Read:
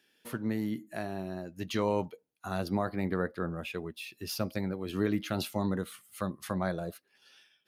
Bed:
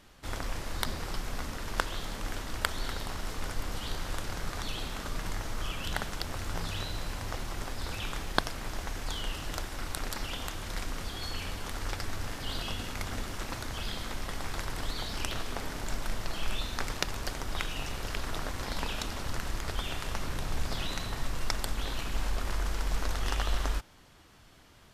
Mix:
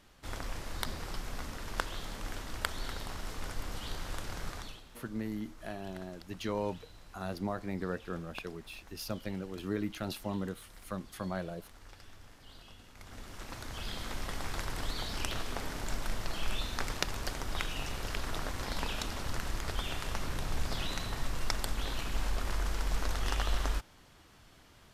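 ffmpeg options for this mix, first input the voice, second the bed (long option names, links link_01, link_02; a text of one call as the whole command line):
ffmpeg -i stem1.wav -i stem2.wav -filter_complex "[0:a]adelay=4700,volume=-5dB[link_01];[1:a]volume=13dB,afade=type=out:start_time=4.48:duration=0.34:silence=0.188365,afade=type=in:start_time=12.93:duration=1.27:silence=0.141254[link_02];[link_01][link_02]amix=inputs=2:normalize=0" out.wav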